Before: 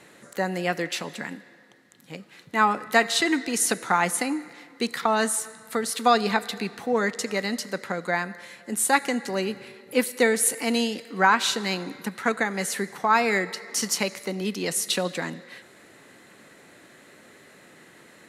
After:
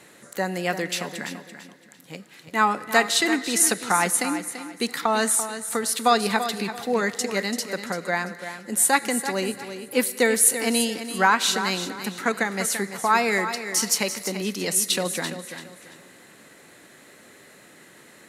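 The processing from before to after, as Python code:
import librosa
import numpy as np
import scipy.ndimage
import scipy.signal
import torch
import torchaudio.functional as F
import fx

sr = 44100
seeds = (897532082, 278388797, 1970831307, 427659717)

y = fx.high_shelf(x, sr, hz=6100.0, db=7.0)
y = fx.echo_feedback(y, sr, ms=338, feedback_pct=29, wet_db=-10.5)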